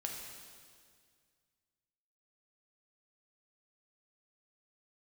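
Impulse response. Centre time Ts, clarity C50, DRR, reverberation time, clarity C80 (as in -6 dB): 73 ms, 2.5 dB, 0.0 dB, 2.0 s, 4.0 dB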